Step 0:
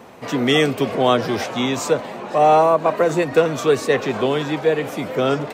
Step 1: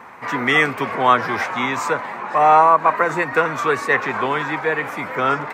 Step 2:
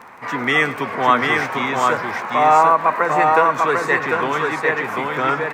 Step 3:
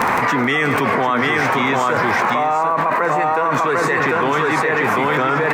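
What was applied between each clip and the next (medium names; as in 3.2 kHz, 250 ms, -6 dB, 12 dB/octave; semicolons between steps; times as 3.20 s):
high-order bell 1.4 kHz +13.5 dB; trim -5.5 dB
crackle 16 per s -29 dBFS; multi-tap echo 106/746 ms -16.5/-3 dB; trim -1 dB
bass shelf 470 Hz +3 dB; level flattener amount 100%; trim -7 dB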